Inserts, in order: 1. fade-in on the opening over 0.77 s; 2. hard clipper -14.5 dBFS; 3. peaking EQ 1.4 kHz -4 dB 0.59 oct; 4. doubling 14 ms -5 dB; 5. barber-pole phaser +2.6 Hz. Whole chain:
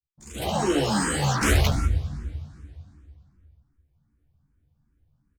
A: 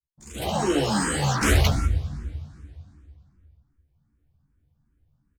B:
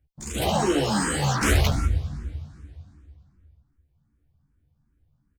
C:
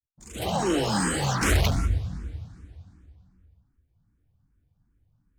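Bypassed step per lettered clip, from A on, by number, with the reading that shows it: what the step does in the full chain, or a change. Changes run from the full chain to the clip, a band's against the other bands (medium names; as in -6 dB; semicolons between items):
2, distortion -20 dB; 1, momentary loudness spread change -2 LU; 4, loudness change -1.5 LU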